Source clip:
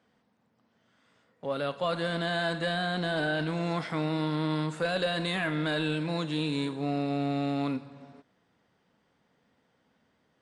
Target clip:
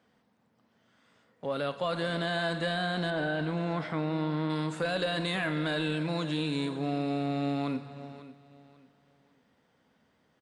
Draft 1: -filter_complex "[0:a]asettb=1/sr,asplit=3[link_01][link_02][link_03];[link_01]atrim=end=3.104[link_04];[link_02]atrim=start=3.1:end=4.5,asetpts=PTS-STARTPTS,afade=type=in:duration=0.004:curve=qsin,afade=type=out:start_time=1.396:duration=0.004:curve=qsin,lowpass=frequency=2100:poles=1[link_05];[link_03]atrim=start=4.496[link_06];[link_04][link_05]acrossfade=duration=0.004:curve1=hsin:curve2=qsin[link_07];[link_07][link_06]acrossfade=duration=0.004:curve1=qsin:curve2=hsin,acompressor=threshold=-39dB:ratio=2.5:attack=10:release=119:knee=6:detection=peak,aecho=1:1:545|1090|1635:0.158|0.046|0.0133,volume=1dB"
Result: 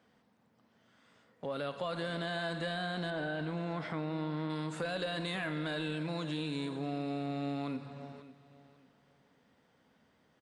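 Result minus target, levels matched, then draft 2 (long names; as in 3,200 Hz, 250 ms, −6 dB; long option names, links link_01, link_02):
downward compressor: peak gain reduction +6 dB
-filter_complex "[0:a]asettb=1/sr,asplit=3[link_01][link_02][link_03];[link_01]atrim=end=3.104[link_04];[link_02]atrim=start=3.1:end=4.5,asetpts=PTS-STARTPTS,afade=type=in:duration=0.004:curve=qsin,afade=type=out:start_time=1.396:duration=0.004:curve=qsin,lowpass=frequency=2100:poles=1[link_05];[link_03]atrim=start=4.496[link_06];[link_04][link_05]acrossfade=duration=0.004:curve1=hsin:curve2=qsin[link_07];[link_07][link_06]acrossfade=duration=0.004:curve1=qsin:curve2=hsin,acompressor=threshold=-28.5dB:ratio=2.5:attack=10:release=119:knee=6:detection=peak,aecho=1:1:545|1090|1635:0.158|0.046|0.0133,volume=1dB"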